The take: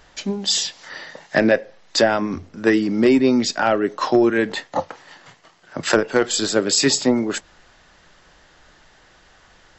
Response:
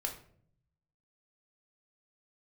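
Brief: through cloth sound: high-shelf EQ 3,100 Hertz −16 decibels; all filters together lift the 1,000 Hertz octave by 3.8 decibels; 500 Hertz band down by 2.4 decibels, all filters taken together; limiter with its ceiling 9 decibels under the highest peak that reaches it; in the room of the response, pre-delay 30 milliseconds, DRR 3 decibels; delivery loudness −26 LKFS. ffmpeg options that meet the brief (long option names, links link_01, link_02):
-filter_complex "[0:a]equalizer=frequency=500:width_type=o:gain=-5,equalizer=frequency=1000:width_type=o:gain=9,alimiter=limit=-9.5dB:level=0:latency=1,asplit=2[link_01][link_02];[1:a]atrim=start_sample=2205,adelay=30[link_03];[link_02][link_03]afir=irnorm=-1:irlink=0,volume=-4.5dB[link_04];[link_01][link_04]amix=inputs=2:normalize=0,highshelf=frequency=3100:gain=-16,volume=-4dB"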